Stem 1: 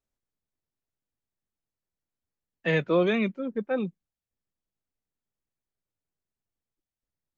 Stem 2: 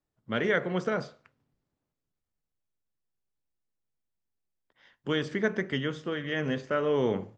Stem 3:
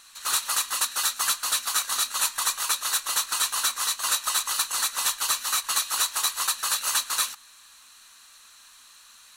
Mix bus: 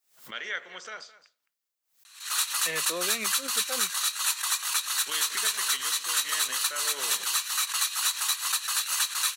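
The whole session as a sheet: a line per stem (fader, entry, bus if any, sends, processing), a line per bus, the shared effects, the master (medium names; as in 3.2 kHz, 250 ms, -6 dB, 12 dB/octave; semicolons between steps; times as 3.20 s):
-2.5 dB, 0.00 s, no send, no echo send, none
-5.0 dB, 0.00 s, no send, echo send -17 dB, tilt EQ +4 dB/octave
-2.5 dB, 2.05 s, no send, no echo send, peaking EQ 2.2 kHz +3.5 dB 1.4 oct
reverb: none
echo: delay 214 ms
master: high-pass 1.4 kHz 6 dB/octave; swell ahead of each attack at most 130 dB/s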